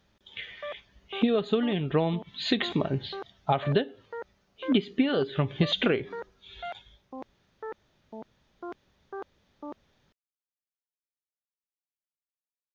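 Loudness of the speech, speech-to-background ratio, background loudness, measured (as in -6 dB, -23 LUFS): -28.0 LUFS, 16.0 dB, -44.0 LUFS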